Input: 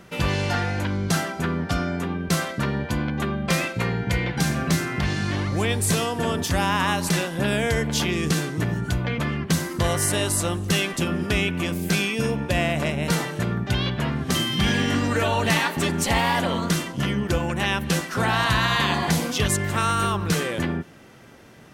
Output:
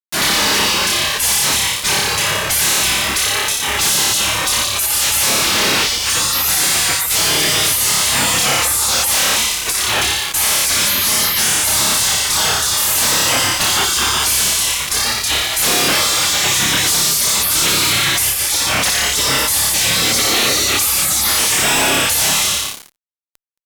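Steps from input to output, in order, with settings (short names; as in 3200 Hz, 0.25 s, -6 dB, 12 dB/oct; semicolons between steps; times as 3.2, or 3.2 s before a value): octaver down 1 oct, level -1 dB; HPF 520 Hz 12 dB/oct; flutter echo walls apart 4.6 m, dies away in 0.97 s; spectral gate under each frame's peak -20 dB weak; fuzz box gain 47 dB, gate -48 dBFS; upward compressor, threshold -22 dBFS; speed mistake 48 kHz file played as 44.1 kHz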